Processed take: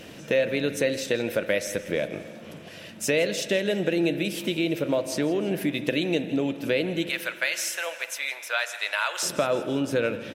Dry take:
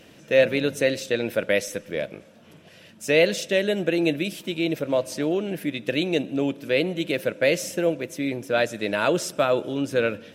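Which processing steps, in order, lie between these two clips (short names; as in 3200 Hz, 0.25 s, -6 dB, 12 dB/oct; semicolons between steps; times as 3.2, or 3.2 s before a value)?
7.09–9.23 HPF 890 Hz 24 dB/oct; compressor 3:1, threshold -31 dBFS, peak gain reduction 14 dB; crackle 26/s -53 dBFS; feedback echo 0.165 s, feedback 52%, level -18 dB; spring tank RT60 2.3 s, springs 41 ms, chirp 50 ms, DRR 12.5 dB; gain +6.5 dB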